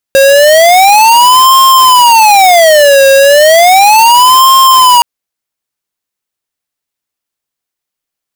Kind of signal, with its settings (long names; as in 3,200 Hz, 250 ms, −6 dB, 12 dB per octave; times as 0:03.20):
siren wail 543–1,060 Hz 0.34 per second square −3.5 dBFS 4.87 s